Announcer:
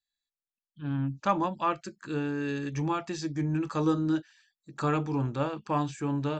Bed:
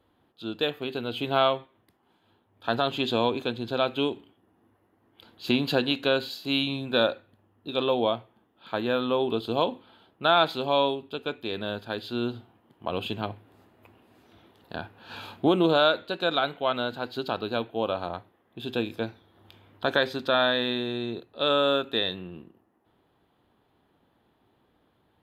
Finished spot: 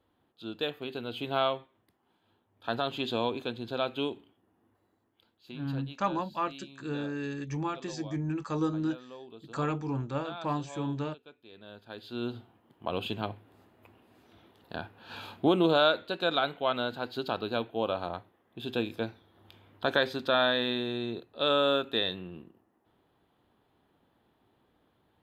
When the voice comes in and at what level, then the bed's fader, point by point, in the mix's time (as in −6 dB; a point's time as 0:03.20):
4.75 s, −3.5 dB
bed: 0:04.91 −5.5 dB
0:05.46 −21.5 dB
0:11.46 −21.5 dB
0:12.37 −2.5 dB